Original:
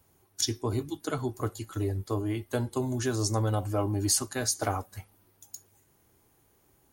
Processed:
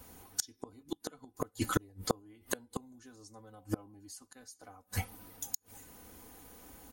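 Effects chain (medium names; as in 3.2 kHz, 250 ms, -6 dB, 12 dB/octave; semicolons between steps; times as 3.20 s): comb 4 ms, depth 68%; inverted gate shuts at -25 dBFS, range -36 dB; trim +10.5 dB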